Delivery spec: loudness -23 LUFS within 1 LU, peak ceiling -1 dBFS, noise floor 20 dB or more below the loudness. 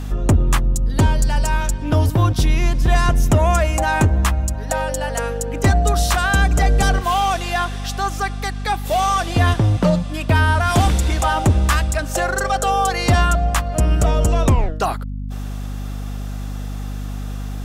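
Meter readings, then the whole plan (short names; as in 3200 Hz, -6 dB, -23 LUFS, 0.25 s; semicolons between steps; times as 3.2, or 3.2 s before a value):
ticks 20/s; hum 50 Hz; harmonics up to 250 Hz; hum level -23 dBFS; loudness -18.5 LUFS; peak -6.5 dBFS; loudness target -23.0 LUFS
-> de-click; notches 50/100/150/200/250 Hz; gain -4.5 dB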